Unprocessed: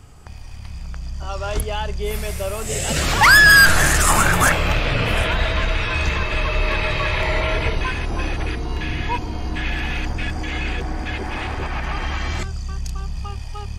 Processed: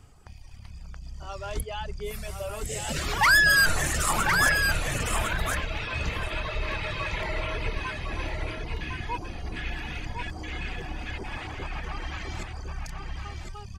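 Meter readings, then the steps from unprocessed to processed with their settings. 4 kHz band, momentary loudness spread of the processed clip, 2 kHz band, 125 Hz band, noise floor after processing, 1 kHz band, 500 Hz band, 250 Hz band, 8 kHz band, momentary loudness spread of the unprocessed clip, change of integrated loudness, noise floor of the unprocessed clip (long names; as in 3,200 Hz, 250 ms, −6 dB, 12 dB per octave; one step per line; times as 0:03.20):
−8.5 dB, 17 LU, −8.5 dB, −10.0 dB, −42 dBFS, −8.5 dB, −9.5 dB, −10.0 dB, −8.5 dB, 16 LU, −8.5 dB, −32 dBFS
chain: reverb reduction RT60 1.2 s
single-tap delay 1,057 ms −5.5 dB
level −8 dB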